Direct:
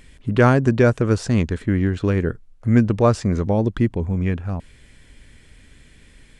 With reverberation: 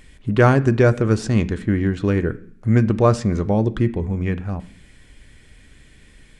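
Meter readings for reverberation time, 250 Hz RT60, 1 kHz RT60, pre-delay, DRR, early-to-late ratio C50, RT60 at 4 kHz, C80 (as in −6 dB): 0.55 s, 0.70 s, 0.55 s, 3 ms, 9.5 dB, 18.5 dB, 0.70 s, 21.5 dB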